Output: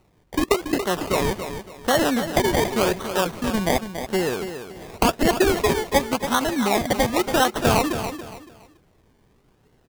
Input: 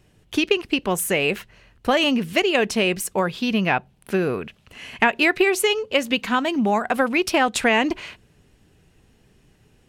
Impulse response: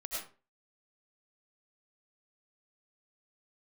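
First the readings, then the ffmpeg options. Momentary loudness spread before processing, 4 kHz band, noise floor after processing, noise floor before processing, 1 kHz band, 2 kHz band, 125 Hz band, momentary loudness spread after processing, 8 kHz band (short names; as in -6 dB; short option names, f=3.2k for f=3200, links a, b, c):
10 LU, -3.0 dB, -61 dBFS, -59 dBFS, +1.0 dB, -5.0 dB, +4.0 dB, 10 LU, +1.0 dB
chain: -af "bass=f=250:g=-5,treble=f=4k:g=-6,acrusher=samples=26:mix=1:aa=0.000001:lfo=1:lforange=15.6:lforate=0.9,aecho=1:1:282|564|846:0.335|0.0971|0.0282"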